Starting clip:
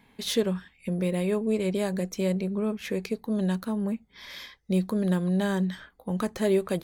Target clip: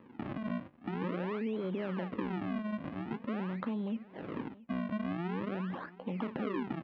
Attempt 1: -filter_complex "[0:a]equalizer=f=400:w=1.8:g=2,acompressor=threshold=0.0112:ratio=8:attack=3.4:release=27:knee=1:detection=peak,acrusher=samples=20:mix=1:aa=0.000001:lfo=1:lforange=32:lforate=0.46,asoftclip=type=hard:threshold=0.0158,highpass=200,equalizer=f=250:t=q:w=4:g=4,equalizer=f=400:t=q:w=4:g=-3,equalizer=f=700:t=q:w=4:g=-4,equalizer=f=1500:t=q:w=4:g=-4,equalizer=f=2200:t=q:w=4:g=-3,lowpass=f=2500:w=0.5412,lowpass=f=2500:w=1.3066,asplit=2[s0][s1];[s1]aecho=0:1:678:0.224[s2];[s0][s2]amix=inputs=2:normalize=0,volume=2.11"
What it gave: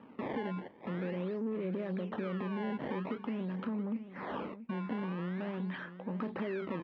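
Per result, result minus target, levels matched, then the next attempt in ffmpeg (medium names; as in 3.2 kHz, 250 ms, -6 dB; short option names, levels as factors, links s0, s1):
hard clipper: distortion +12 dB; decimation with a swept rate: distortion -9 dB; echo-to-direct +7 dB
-filter_complex "[0:a]equalizer=f=400:w=1.8:g=2,acompressor=threshold=0.0112:ratio=8:attack=3.4:release=27:knee=1:detection=peak,acrusher=samples=58:mix=1:aa=0.000001:lfo=1:lforange=92.8:lforate=0.46,asoftclip=type=hard:threshold=0.0447,highpass=200,equalizer=f=250:t=q:w=4:g=4,equalizer=f=400:t=q:w=4:g=-3,equalizer=f=700:t=q:w=4:g=-4,equalizer=f=1500:t=q:w=4:g=-4,equalizer=f=2200:t=q:w=4:g=-3,lowpass=f=2500:w=0.5412,lowpass=f=2500:w=1.3066,asplit=2[s0][s1];[s1]aecho=0:1:678:0.224[s2];[s0][s2]amix=inputs=2:normalize=0,volume=2.11"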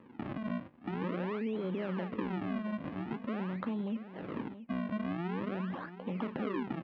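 echo-to-direct +7 dB
-filter_complex "[0:a]equalizer=f=400:w=1.8:g=2,acompressor=threshold=0.0112:ratio=8:attack=3.4:release=27:knee=1:detection=peak,acrusher=samples=58:mix=1:aa=0.000001:lfo=1:lforange=92.8:lforate=0.46,asoftclip=type=hard:threshold=0.0447,highpass=200,equalizer=f=250:t=q:w=4:g=4,equalizer=f=400:t=q:w=4:g=-3,equalizer=f=700:t=q:w=4:g=-4,equalizer=f=1500:t=q:w=4:g=-4,equalizer=f=2200:t=q:w=4:g=-3,lowpass=f=2500:w=0.5412,lowpass=f=2500:w=1.3066,asplit=2[s0][s1];[s1]aecho=0:1:678:0.1[s2];[s0][s2]amix=inputs=2:normalize=0,volume=2.11"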